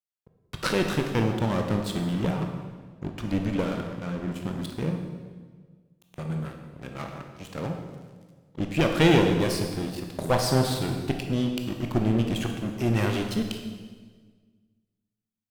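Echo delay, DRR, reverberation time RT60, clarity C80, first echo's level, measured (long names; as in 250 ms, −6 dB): no echo audible, 3.0 dB, 1.5 s, 7.0 dB, no echo audible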